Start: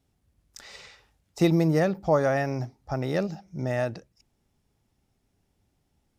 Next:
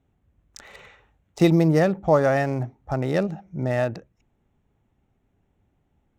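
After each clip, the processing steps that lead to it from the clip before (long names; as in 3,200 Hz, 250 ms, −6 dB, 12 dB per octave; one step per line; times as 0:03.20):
adaptive Wiener filter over 9 samples
level +4 dB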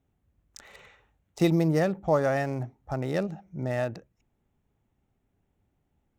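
high-shelf EQ 6,800 Hz +5 dB
level −5.5 dB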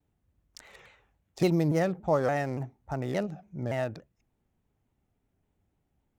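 pitch modulation by a square or saw wave saw down 3.5 Hz, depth 160 cents
level −2 dB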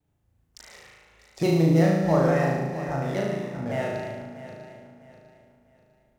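feedback delay that plays each chunk backwards 325 ms, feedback 56%, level −9 dB
on a send: flutter between parallel walls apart 6.3 metres, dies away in 1.1 s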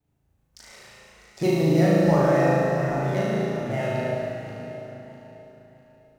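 dense smooth reverb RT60 3.3 s, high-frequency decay 0.75×, DRR −2 dB
level −1.5 dB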